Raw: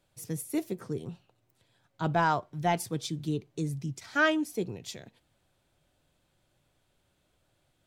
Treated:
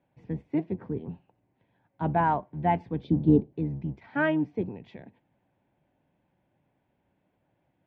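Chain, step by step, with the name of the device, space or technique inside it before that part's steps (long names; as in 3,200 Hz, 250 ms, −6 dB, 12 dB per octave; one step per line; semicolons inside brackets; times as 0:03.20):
0:03.04–0:03.53: octave-band graphic EQ 125/250/500/1,000/2,000/4,000/8,000 Hz +6/+8/+11/−8/−10/+7/−9 dB
sub-octave bass pedal (sub-octave generator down 1 octave, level −5 dB; loudspeaker in its box 69–2,300 Hz, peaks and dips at 76 Hz −8 dB, 190 Hz +5 dB, 270 Hz +5 dB, 870 Hz +6 dB, 1,300 Hz −10 dB)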